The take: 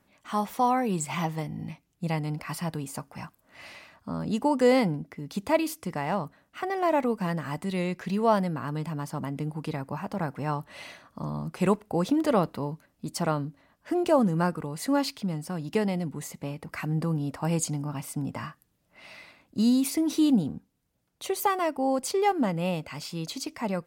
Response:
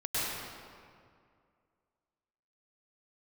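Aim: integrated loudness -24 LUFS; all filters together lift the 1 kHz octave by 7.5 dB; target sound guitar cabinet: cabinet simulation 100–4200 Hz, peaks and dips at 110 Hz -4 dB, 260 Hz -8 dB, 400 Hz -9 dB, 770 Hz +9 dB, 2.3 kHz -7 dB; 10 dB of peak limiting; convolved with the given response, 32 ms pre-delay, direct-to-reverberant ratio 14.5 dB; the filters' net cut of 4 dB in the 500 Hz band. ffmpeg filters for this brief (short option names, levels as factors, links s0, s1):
-filter_complex "[0:a]equalizer=f=500:t=o:g=-8,equalizer=f=1000:t=o:g=6.5,alimiter=limit=0.106:level=0:latency=1,asplit=2[s0][s1];[1:a]atrim=start_sample=2205,adelay=32[s2];[s1][s2]afir=irnorm=-1:irlink=0,volume=0.0708[s3];[s0][s3]amix=inputs=2:normalize=0,highpass=100,equalizer=f=110:t=q:w=4:g=-4,equalizer=f=260:t=q:w=4:g=-8,equalizer=f=400:t=q:w=4:g=-9,equalizer=f=770:t=q:w=4:g=9,equalizer=f=2300:t=q:w=4:g=-7,lowpass=f=4200:w=0.5412,lowpass=f=4200:w=1.3066,volume=2.11"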